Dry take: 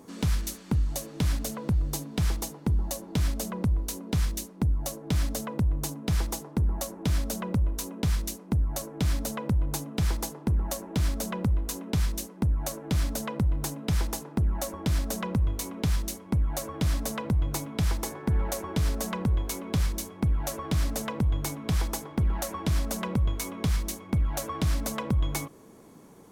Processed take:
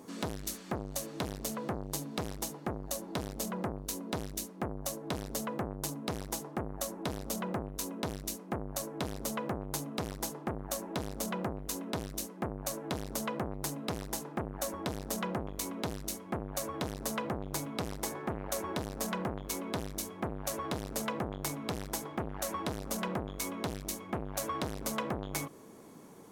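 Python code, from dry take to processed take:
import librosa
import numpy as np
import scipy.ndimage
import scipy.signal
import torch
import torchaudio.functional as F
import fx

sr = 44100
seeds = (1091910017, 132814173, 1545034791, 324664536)

y = fx.low_shelf(x, sr, hz=86.0, db=-10.0)
y = fx.transformer_sat(y, sr, knee_hz=1100.0)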